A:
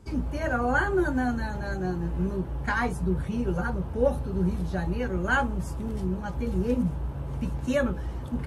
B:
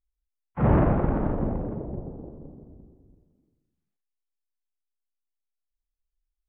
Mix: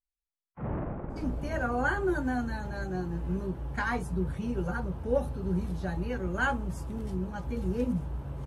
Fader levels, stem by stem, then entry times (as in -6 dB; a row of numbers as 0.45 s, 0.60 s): -4.0 dB, -14.0 dB; 1.10 s, 0.00 s